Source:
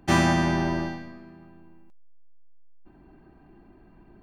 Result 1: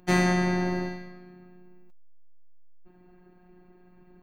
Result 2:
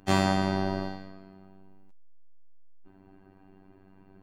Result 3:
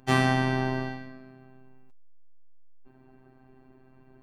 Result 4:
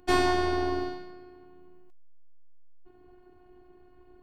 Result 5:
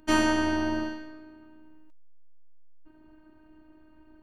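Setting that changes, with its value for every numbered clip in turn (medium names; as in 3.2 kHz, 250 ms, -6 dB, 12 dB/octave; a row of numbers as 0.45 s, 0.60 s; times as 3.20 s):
robot voice, frequency: 180 Hz, 96 Hz, 130 Hz, 360 Hz, 310 Hz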